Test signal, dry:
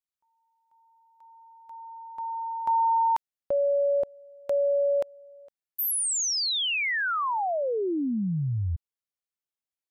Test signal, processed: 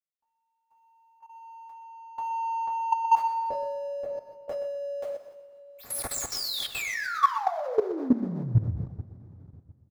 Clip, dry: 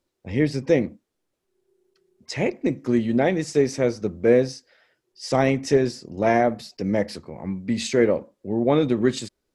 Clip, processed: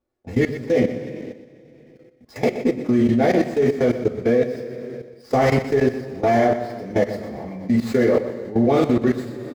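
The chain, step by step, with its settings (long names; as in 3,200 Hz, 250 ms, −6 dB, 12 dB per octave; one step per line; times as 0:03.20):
running median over 15 samples
coupled-rooms reverb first 0.26 s, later 2.6 s, from −19 dB, DRR −8 dB
output level in coarse steps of 16 dB
repeating echo 123 ms, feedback 28%, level −12 dB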